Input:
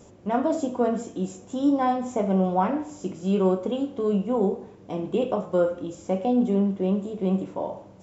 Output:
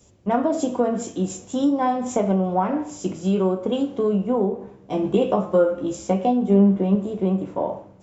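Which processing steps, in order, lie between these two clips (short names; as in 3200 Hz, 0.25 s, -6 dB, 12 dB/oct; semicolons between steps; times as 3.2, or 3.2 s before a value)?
compressor 6:1, threshold -25 dBFS, peak gain reduction 9 dB; 4.59–6.95 doubler 15 ms -5.5 dB; three-band expander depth 70%; gain +8 dB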